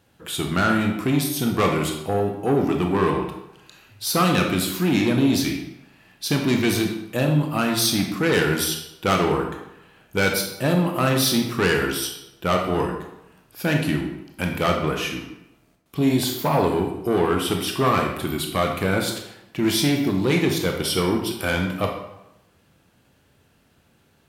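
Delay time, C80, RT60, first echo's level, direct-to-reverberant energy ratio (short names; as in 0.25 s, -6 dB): none, 8.0 dB, 0.90 s, none, 2.0 dB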